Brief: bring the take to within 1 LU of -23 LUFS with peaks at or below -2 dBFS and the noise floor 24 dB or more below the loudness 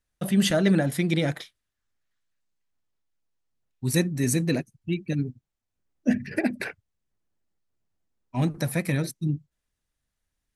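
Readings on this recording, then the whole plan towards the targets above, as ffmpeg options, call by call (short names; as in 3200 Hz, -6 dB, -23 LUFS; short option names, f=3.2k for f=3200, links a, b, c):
loudness -26.5 LUFS; peak -9.0 dBFS; loudness target -23.0 LUFS
-> -af "volume=3.5dB"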